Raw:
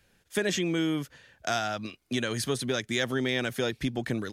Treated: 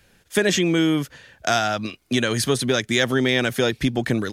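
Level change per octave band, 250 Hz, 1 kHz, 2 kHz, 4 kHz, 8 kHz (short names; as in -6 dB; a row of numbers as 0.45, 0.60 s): +8.5, +8.5, +8.5, +8.5, +8.5 dB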